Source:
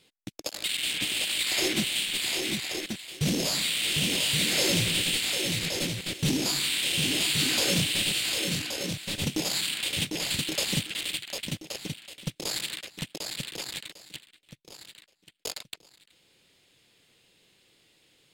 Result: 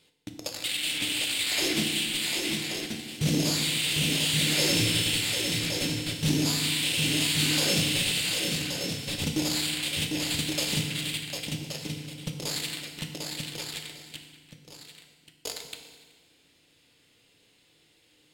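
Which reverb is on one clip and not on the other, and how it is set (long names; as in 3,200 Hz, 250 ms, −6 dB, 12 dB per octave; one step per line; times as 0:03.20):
feedback delay network reverb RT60 1.6 s, low-frequency decay 1.4×, high-frequency decay 0.85×, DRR 3.5 dB
level −1.5 dB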